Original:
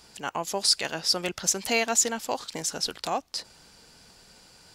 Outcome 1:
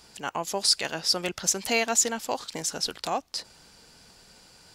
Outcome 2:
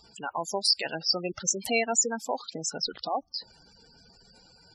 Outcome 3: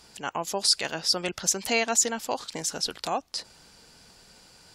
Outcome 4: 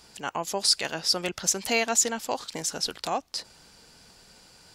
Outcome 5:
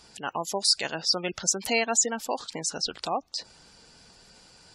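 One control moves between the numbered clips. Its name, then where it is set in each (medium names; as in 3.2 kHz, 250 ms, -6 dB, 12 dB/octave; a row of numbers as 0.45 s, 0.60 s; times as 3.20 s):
spectral gate, under each frame's peak: -60 dB, -10 dB, -35 dB, -45 dB, -20 dB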